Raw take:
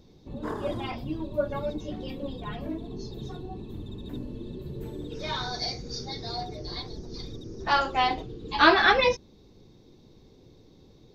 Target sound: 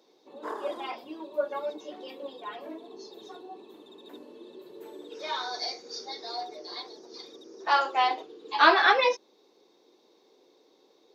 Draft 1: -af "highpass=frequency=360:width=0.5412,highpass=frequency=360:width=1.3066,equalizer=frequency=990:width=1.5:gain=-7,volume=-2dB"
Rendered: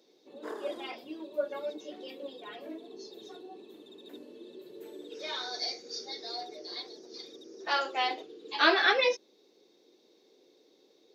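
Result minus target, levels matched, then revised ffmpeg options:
1,000 Hz band −3.5 dB
-af "highpass=frequency=360:width=0.5412,highpass=frequency=360:width=1.3066,equalizer=frequency=990:width=1.5:gain=3.5,volume=-2dB"

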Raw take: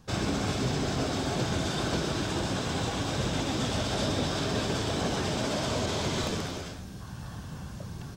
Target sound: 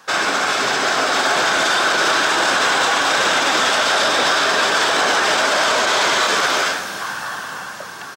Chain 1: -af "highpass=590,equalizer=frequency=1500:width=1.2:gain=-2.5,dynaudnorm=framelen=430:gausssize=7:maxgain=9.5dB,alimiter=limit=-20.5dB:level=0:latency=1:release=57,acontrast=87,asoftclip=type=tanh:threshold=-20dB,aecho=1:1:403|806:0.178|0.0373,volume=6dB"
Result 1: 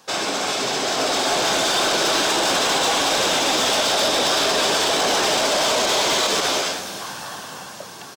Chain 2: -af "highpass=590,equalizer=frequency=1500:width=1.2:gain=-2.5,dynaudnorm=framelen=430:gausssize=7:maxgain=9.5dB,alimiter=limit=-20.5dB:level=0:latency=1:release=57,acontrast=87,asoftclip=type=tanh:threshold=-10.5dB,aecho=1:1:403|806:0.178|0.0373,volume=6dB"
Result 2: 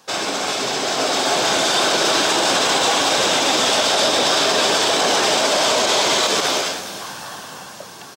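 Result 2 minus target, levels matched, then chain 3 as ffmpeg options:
2,000 Hz band −5.5 dB
-af "highpass=590,equalizer=frequency=1500:width=1.2:gain=9,dynaudnorm=framelen=430:gausssize=7:maxgain=9.5dB,alimiter=limit=-20.5dB:level=0:latency=1:release=57,acontrast=87,asoftclip=type=tanh:threshold=-10.5dB,aecho=1:1:403|806:0.178|0.0373,volume=6dB"

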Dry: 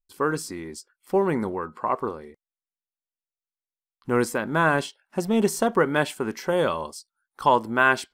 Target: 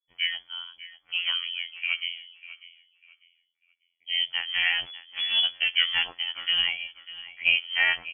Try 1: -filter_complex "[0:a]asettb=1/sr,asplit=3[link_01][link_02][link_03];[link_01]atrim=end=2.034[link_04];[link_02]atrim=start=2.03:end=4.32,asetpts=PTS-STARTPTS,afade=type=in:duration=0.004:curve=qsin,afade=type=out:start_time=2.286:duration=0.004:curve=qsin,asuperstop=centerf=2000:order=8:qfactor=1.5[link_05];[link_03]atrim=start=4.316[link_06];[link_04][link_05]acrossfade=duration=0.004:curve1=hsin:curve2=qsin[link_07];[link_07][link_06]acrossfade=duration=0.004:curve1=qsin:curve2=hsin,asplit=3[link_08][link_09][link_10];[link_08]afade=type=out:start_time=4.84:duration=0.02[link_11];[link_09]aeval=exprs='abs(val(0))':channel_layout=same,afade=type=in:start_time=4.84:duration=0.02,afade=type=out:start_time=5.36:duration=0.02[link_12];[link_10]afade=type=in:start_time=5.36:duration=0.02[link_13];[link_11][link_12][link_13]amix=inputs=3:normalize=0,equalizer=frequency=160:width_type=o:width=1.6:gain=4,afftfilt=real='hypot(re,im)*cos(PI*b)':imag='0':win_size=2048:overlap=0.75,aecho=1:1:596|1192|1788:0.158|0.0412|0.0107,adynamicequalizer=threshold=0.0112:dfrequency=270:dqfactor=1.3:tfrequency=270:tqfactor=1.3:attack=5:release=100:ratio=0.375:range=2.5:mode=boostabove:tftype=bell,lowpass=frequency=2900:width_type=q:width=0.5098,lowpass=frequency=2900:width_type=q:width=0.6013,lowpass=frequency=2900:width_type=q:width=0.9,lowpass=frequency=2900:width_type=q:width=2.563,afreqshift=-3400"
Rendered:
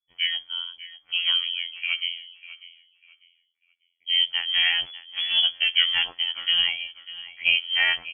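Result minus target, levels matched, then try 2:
125 Hz band −3.0 dB
-filter_complex "[0:a]asettb=1/sr,asplit=3[link_01][link_02][link_03];[link_01]atrim=end=2.034[link_04];[link_02]atrim=start=2.03:end=4.32,asetpts=PTS-STARTPTS,afade=type=in:duration=0.004:curve=qsin,afade=type=out:start_time=2.286:duration=0.004:curve=qsin,asuperstop=centerf=2000:order=8:qfactor=1.5[link_05];[link_03]atrim=start=4.316[link_06];[link_04][link_05]acrossfade=duration=0.004:curve1=hsin:curve2=qsin[link_07];[link_07][link_06]acrossfade=duration=0.004:curve1=qsin:curve2=hsin,asplit=3[link_08][link_09][link_10];[link_08]afade=type=out:start_time=4.84:duration=0.02[link_11];[link_09]aeval=exprs='abs(val(0))':channel_layout=same,afade=type=in:start_time=4.84:duration=0.02,afade=type=out:start_time=5.36:duration=0.02[link_12];[link_10]afade=type=in:start_time=5.36:duration=0.02[link_13];[link_11][link_12][link_13]amix=inputs=3:normalize=0,equalizer=frequency=160:width_type=o:width=1.6:gain=-7.5,afftfilt=real='hypot(re,im)*cos(PI*b)':imag='0':win_size=2048:overlap=0.75,aecho=1:1:596|1192|1788:0.158|0.0412|0.0107,adynamicequalizer=threshold=0.0112:dfrequency=270:dqfactor=1.3:tfrequency=270:tqfactor=1.3:attack=5:release=100:ratio=0.375:range=2.5:mode=boostabove:tftype=bell,lowpass=frequency=2900:width_type=q:width=0.5098,lowpass=frequency=2900:width_type=q:width=0.6013,lowpass=frequency=2900:width_type=q:width=0.9,lowpass=frequency=2900:width_type=q:width=2.563,afreqshift=-3400"

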